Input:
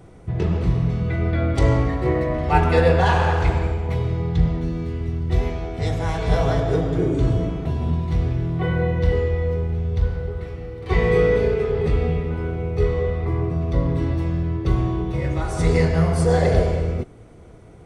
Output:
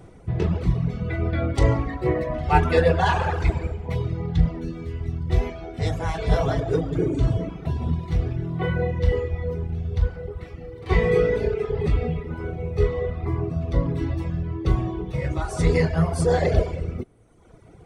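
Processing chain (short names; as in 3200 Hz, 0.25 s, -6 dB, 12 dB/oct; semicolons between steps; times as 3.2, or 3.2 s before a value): reverb removal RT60 1.2 s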